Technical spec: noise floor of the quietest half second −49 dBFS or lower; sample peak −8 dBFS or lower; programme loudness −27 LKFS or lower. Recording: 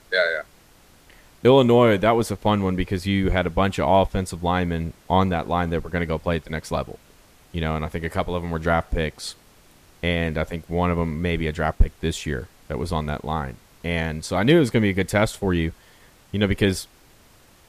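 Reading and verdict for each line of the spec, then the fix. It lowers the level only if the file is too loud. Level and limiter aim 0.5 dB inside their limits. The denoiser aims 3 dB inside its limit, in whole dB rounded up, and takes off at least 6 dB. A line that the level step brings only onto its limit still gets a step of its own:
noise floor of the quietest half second −53 dBFS: in spec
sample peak −5.0 dBFS: out of spec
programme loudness −22.5 LKFS: out of spec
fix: level −5 dB

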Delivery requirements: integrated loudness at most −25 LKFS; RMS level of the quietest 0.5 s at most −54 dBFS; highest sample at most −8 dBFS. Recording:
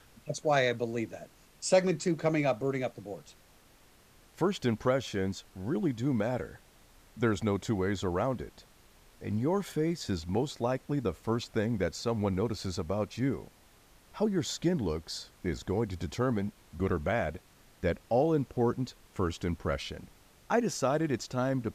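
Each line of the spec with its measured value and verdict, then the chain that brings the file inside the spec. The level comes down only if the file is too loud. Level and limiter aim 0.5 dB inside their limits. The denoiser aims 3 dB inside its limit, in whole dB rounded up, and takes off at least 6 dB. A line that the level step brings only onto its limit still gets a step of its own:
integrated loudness −31.5 LKFS: in spec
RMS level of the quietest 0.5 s −60 dBFS: in spec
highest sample −12.0 dBFS: in spec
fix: no processing needed

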